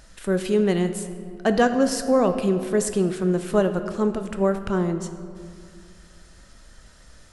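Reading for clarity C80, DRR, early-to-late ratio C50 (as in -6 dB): 10.5 dB, 8.0 dB, 9.5 dB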